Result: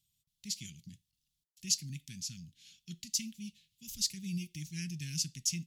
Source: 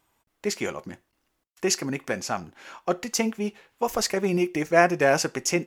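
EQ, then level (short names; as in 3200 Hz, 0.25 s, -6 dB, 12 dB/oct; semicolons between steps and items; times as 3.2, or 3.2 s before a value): elliptic band-stop 160–3500 Hz, stop band 60 dB; low shelf 66 Hz -9 dB; high shelf 10000 Hz -4 dB; -3.0 dB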